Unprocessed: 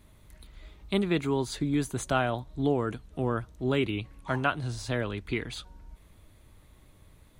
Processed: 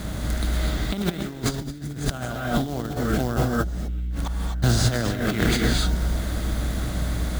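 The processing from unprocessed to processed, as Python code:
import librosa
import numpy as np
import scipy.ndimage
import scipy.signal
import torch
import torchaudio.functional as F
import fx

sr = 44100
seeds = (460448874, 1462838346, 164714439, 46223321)

y = fx.bin_compress(x, sr, power=0.6)
y = fx.low_shelf(y, sr, hz=380.0, db=5.5, at=(1.29, 2.13))
y = fx.gate_flip(y, sr, shuts_db=-26.0, range_db=-34, at=(3.36, 4.62), fade=0.02)
y = fx.quant_float(y, sr, bits=2)
y = fx.add_hum(y, sr, base_hz=60, snr_db=16)
y = fx.rev_gated(y, sr, seeds[0], gate_ms=280, shape='rising', drr_db=0.0)
y = fx.over_compress(y, sr, threshold_db=-28.0, ratio=-0.5)
y = fx.graphic_eq_15(y, sr, hz=(400, 1000, 2500, 10000), db=(-9, -8, -10, -6))
y = y * 10.0 ** (8.5 / 20.0)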